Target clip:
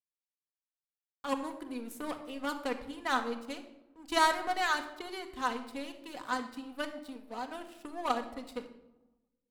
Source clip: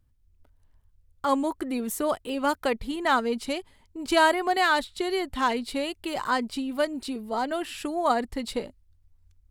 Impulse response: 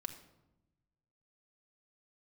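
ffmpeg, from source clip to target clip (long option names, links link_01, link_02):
-filter_complex "[0:a]aeval=exprs='0.355*(cos(1*acos(clip(val(0)/0.355,-1,1)))-cos(1*PI/2))+0.0708*(cos(3*acos(clip(val(0)/0.355,-1,1)))-cos(3*PI/2))+0.00447*(cos(7*acos(clip(val(0)/0.355,-1,1)))-cos(7*PI/2))':channel_layout=same,aeval=exprs='sgn(val(0))*max(abs(val(0))-0.00376,0)':channel_layout=same[link_01];[1:a]atrim=start_sample=2205[link_02];[link_01][link_02]afir=irnorm=-1:irlink=0"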